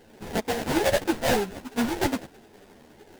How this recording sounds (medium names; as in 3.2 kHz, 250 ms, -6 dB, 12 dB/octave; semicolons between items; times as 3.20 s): aliases and images of a low sample rate 1.2 kHz, jitter 20%; a shimmering, thickened sound